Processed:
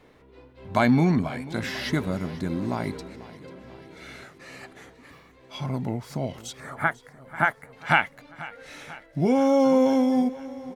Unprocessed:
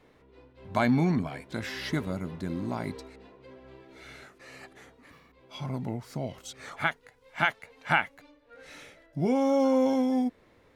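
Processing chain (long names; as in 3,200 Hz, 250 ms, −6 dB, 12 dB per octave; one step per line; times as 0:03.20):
0:06.60–0:07.73: flat-topped bell 4,000 Hz −14.5 dB
repeating echo 491 ms, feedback 60%, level −18 dB
level +4.5 dB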